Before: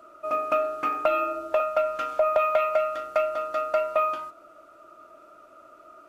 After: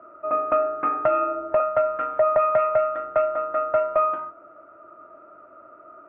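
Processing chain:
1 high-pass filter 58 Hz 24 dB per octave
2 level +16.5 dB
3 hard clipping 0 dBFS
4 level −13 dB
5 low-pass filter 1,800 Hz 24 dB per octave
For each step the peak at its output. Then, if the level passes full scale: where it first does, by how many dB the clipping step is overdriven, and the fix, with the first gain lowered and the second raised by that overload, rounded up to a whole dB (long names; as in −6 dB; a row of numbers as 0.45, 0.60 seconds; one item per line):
−10.5, +6.0, 0.0, −13.0, −11.5 dBFS
step 2, 6.0 dB
step 2 +10.5 dB, step 4 −7 dB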